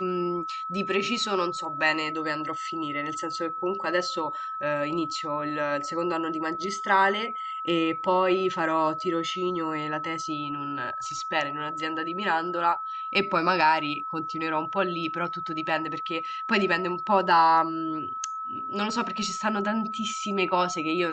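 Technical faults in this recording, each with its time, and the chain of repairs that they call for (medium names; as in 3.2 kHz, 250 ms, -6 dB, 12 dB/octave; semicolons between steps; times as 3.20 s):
whine 1.3 kHz -31 dBFS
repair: band-stop 1.3 kHz, Q 30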